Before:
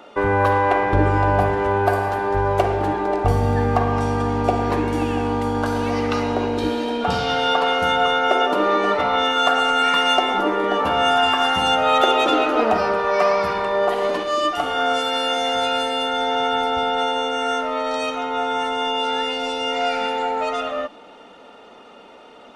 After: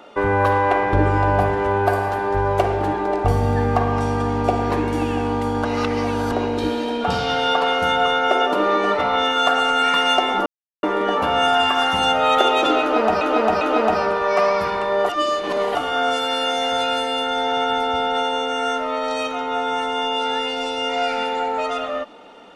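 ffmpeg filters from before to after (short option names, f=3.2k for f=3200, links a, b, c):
-filter_complex "[0:a]asplit=8[a][b][c][d][e][f][g][h];[a]atrim=end=5.652[i];[b]atrim=start=5.648:end=6.322,asetpts=PTS-STARTPTS,areverse[j];[c]atrim=start=6.318:end=10.46,asetpts=PTS-STARTPTS,afade=t=out:st=4.138:d=0.004:c=hsin,apad=pad_dur=0.37[k];[d]atrim=start=10.46:end=12.842,asetpts=PTS-STARTPTS,afade=t=in:d=0.004:c=hsin[l];[e]atrim=start=12.438:end=12.842[m];[f]atrim=start=12.438:end=13.922[n];[g]atrim=start=13.918:end=14.582,asetpts=PTS-STARTPTS,areverse[o];[h]atrim=start=14.578[p];[i][j]acrossfade=d=0.004:c1=hsin:c2=hsin[q];[k][l]concat=n=2:v=0:a=1[r];[q][r]acrossfade=d=0.004:c1=hsin:c2=hsin[s];[s][m]acrossfade=d=0.004:c1=hsin:c2=hsin[t];[t][n]acrossfade=d=0.004:c1=hsin:c2=hsin[u];[u][o]acrossfade=d=0.004:c1=hsin:c2=hsin[v];[v][p]acrossfade=d=0.004:c1=hsin:c2=hsin"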